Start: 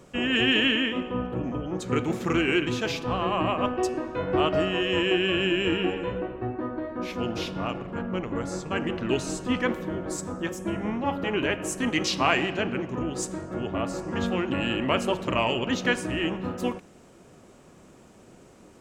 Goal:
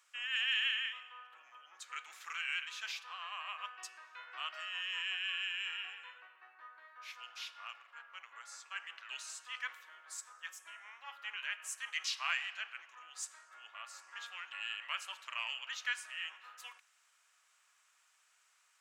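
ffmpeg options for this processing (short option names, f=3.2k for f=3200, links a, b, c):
-af "highpass=f=1.3k:w=0.5412,highpass=f=1.3k:w=1.3066,volume=-9dB"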